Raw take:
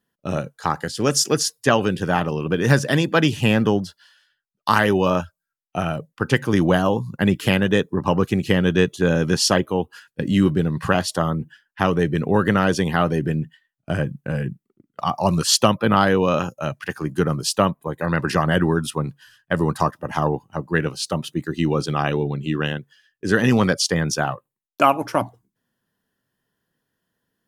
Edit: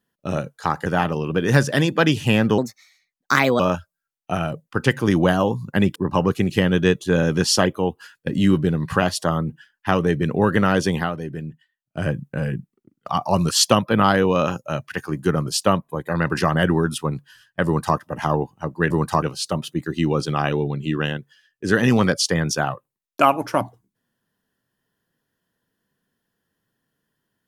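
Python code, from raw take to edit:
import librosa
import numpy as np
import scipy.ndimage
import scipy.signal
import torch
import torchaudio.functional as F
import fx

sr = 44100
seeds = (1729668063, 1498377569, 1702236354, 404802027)

y = fx.edit(x, sr, fx.cut(start_s=0.86, length_s=1.16),
    fx.speed_span(start_s=3.74, length_s=1.31, speed=1.29),
    fx.cut(start_s=7.41, length_s=0.47),
    fx.fade_down_up(start_s=12.9, length_s=1.08, db=-8.5, fade_s=0.13),
    fx.duplicate(start_s=19.58, length_s=0.32, to_s=20.83), tone=tone)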